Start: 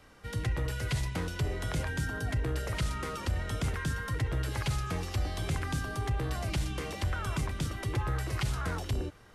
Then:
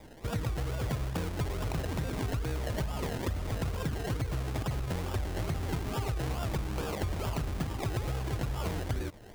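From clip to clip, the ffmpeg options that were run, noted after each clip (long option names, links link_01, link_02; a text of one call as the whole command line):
ffmpeg -i in.wav -af "acrusher=samples=30:mix=1:aa=0.000001:lfo=1:lforange=18:lforate=2.3,acompressor=threshold=-36dB:ratio=6,volume=6.5dB" out.wav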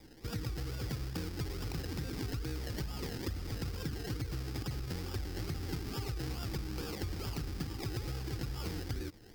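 ffmpeg -i in.wav -af "equalizer=frequency=315:width_type=o:width=0.33:gain=5,equalizer=frequency=630:width_type=o:width=0.33:gain=-12,equalizer=frequency=1000:width_type=o:width=0.33:gain=-7,equalizer=frequency=5000:width_type=o:width=0.33:gain=11,equalizer=frequency=16000:width_type=o:width=0.33:gain=9,volume=-5.5dB" out.wav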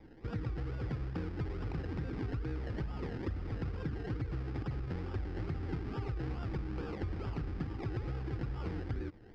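ffmpeg -i in.wav -af "lowpass=1900,volume=1dB" out.wav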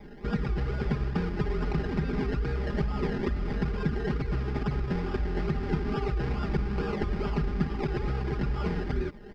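ffmpeg -i in.wav -af "aecho=1:1:4.9:0.91,volume=8dB" out.wav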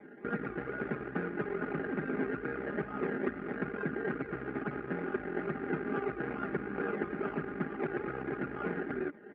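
ffmpeg -i in.wav -af "aeval=exprs='0.211*(cos(1*acos(clip(val(0)/0.211,-1,1)))-cos(1*PI/2))+0.0237*(cos(5*acos(clip(val(0)/0.211,-1,1)))-cos(5*PI/2))+0.015*(cos(7*acos(clip(val(0)/0.211,-1,1)))-cos(7*PI/2))+0.015*(cos(8*acos(clip(val(0)/0.211,-1,1)))-cos(8*PI/2))':channel_layout=same,highpass=270,equalizer=frequency=290:width_type=q:width=4:gain=7,equalizer=frequency=970:width_type=q:width=4:gain=-7,equalizer=frequency=1500:width_type=q:width=4:gain=7,lowpass=frequency=2200:width=0.5412,lowpass=frequency=2200:width=1.3066,volume=-3.5dB" out.wav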